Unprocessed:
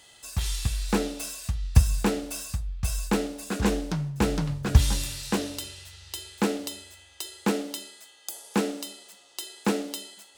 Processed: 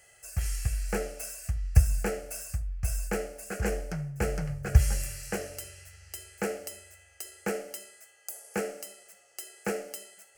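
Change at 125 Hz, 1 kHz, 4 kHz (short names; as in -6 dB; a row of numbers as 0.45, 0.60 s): -2.5, -6.5, -11.5 dB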